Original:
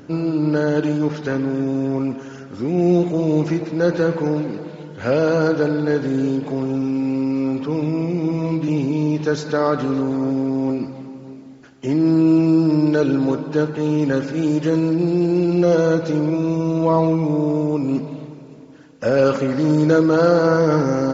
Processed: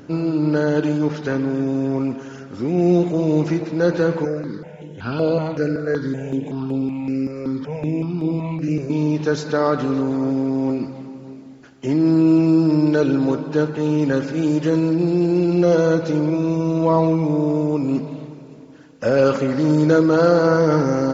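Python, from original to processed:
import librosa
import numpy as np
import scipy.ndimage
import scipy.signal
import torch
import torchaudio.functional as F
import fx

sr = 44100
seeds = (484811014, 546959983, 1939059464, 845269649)

y = fx.phaser_held(x, sr, hz=5.3, low_hz=880.0, high_hz=6000.0, at=(4.25, 8.9))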